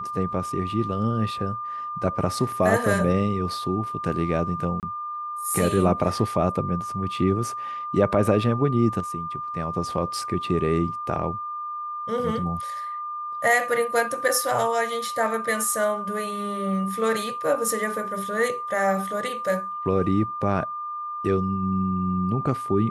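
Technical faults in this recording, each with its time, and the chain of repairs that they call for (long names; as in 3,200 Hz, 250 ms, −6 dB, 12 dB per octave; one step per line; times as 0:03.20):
whistle 1,200 Hz −29 dBFS
0:04.80–0:04.83: drop-out 28 ms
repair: notch filter 1,200 Hz, Q 30
repair the gap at 0:04.80, 28 ms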